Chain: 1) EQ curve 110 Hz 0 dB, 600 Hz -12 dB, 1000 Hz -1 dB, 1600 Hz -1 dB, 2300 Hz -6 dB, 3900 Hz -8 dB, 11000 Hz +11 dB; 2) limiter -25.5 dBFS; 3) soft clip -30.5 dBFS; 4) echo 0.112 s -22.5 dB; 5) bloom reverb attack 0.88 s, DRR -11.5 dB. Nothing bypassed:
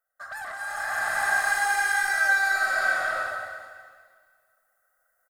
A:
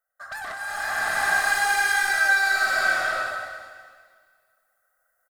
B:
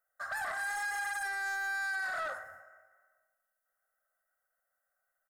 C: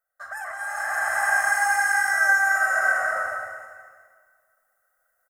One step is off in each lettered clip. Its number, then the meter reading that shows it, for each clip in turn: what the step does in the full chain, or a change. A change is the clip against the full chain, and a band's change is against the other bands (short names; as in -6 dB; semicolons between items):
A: 2, mean gain reduction 3.5 dB; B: 5, momentary loudness spread change -6 LU; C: 3, distortion -16 dB